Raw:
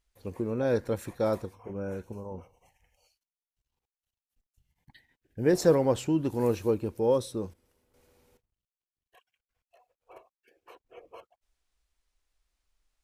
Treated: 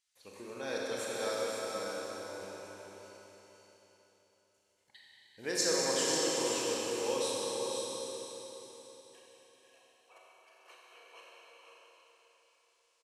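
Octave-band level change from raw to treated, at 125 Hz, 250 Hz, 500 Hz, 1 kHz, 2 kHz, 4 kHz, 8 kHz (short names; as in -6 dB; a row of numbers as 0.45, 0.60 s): -19.0, -11.5, -7.0, -2.0, +3.5, +10.5, +11.0 dB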